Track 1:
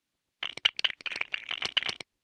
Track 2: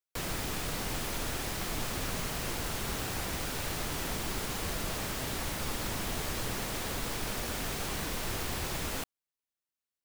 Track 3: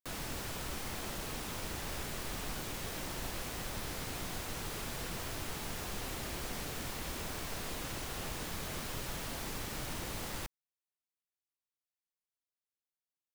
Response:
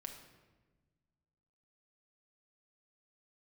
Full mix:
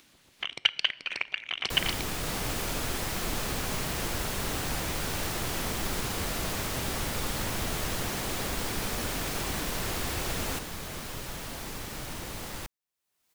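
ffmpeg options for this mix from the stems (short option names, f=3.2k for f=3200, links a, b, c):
-filter_complex "[0:a]volume=-1dB,asplit=2[a][b];[b]volume=-8.5dB[c];[1:a]adelay=1550,volume=2dB[d];[2:a]adelay=2200,volume=2dB[e];[3:a]atrim=start_sample=2205[f];[c][f]afir=irnorm=-1:irlink=0[g];[a][d][e][g]amix=inputs=4:normalize=0,acompressor=mode=upward:threshold=-43dB:ratio=2.5"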